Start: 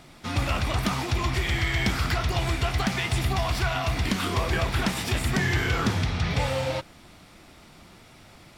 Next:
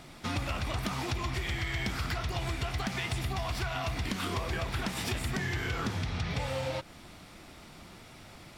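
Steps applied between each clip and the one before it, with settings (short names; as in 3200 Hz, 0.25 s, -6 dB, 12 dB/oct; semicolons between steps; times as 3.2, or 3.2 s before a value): compressor, threshold -30 dBFS, peak gain reduction 10 dB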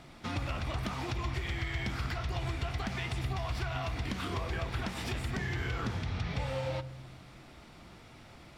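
high shelf 6400 Hz -9 dB; on a send at -15 dB: reverb RT60 1.1 s, pre-delay 3 ms; on the sum: gain -2.5 dB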